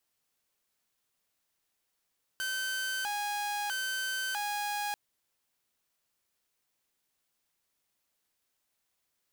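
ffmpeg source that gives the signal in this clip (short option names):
-f lavfi -i "aevalsrc='0.0355*(2*mod((1182.5*t+357.5/0.77*(0.5-abs(mod(0.77*t,1)-0.5))),1)-1)':d=2.54:s=44100"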